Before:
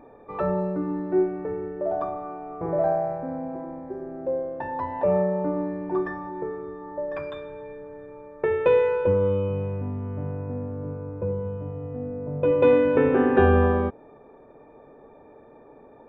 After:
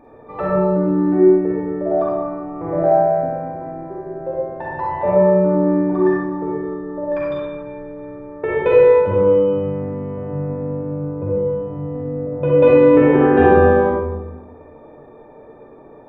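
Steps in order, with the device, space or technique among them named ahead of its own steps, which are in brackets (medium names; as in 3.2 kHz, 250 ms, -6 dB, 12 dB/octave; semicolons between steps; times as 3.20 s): bathroom (reverberation RT60 1.1 s, pre-delay 39 ms, DRR -4.5 dB); trim +1 dB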